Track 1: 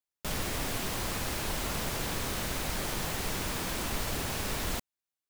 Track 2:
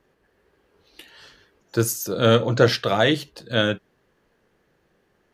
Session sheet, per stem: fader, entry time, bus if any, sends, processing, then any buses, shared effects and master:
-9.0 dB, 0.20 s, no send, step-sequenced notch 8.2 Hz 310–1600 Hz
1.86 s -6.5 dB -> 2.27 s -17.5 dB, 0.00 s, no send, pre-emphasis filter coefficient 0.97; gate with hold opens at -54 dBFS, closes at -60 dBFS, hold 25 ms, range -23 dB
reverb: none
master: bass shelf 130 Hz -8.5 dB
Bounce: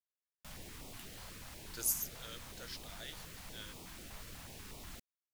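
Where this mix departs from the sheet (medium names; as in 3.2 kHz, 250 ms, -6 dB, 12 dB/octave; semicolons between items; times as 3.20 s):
stem 1 -9.0 dB -> -16.0 dB; master: missing bass shelf 130 Hz -8.5 dB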